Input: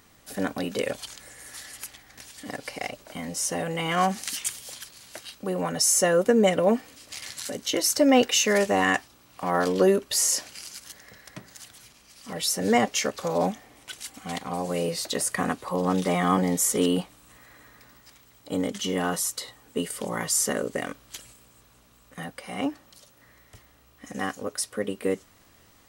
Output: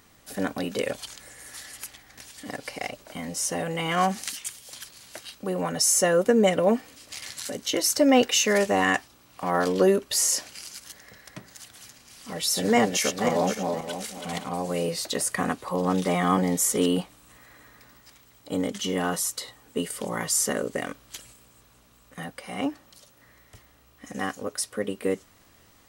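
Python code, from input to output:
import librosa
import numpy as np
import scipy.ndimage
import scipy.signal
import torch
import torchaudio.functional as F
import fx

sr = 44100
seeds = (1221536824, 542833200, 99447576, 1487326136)

y = fx.reverse_delay_fb(x, sr, ms=260, feedback_pct=46, wet_db=-4, at=(11.47, 14.49))
y = fx.edit(y, sr, fx.clip_gain(start_s=4.32, length_s=0.41, db=-5.0), tone=tone)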